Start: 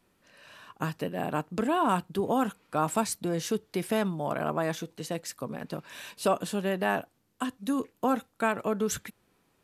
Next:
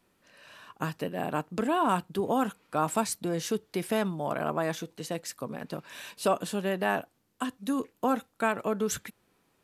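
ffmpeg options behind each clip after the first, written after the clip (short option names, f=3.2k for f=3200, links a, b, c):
-af "lowshelf=f=140:g=-3.5"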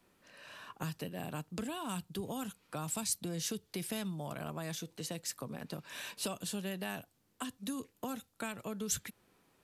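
-filter_complex "[0:a]acrossover=split=160|3000[a][b][c];[b]acompressor=threshold=-42dB:ratio=5[d];[a][d][c]amix=inputs=3:normalize=0"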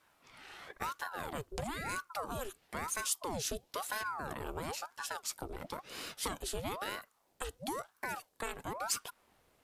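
-af "aeval=exprs='val(0)*sin(2*PI*750*n/s+750*0.75/1*sin(2*PI*1*n/s))':c=same,volume=3dB"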